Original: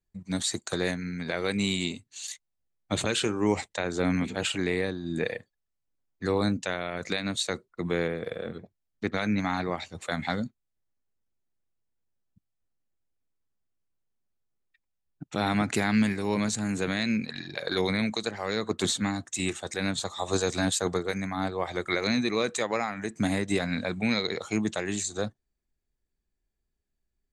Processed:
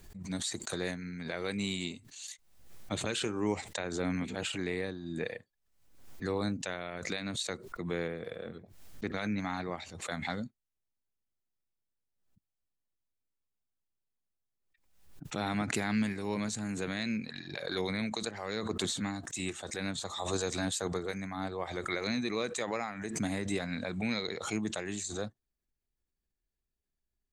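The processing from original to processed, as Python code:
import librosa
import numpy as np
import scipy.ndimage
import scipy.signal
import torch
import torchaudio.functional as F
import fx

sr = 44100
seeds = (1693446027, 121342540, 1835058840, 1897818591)

y = fx.pre_swell(x, sr, db_per_s=70.0)
y = y * 10.0 ** (-7.0 / 20.0)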